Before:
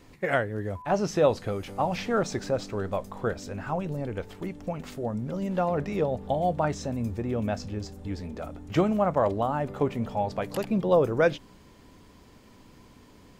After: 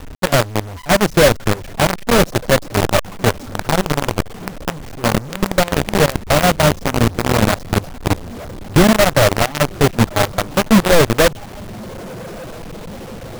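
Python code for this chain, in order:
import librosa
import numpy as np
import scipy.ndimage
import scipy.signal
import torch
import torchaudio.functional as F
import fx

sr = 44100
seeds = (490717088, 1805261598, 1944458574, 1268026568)

p1 = fx.echo_diffused(x, sr, ms=1243, feedback_pct=58, wet_db=-12)
p2 = fx.dynamic_eq(p1, sr, hz=600.0, q=5.6, threshold_db=-40.0, ratio=4.0, max_db=6)
p3 = fx.dereverb_blind(p2, sr, rt60_s=0.93)
p4 = (np.mod(10.0 ** (15.5 / 20.0) * p3 + 1.0, 2.0) - 1.0) / 10.0 ** (15.5 / 20.0)
p5 = p3 + (p4 * librosa.db_to_amplitude(-5.0))
p6 = fx.tilt_eq(p5, sr, slope=-4.0)
p7 = fx.quant_companded(p6, sr, bits=2)
y = p7 * librosa.db_to_amplitude(-4.5)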